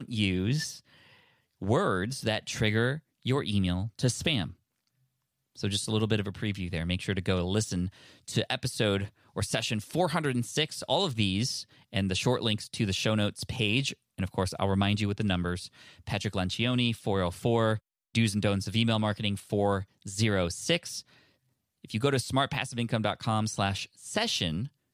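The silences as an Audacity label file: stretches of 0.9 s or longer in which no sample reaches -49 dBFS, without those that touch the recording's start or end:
4.530000	5.560000	silence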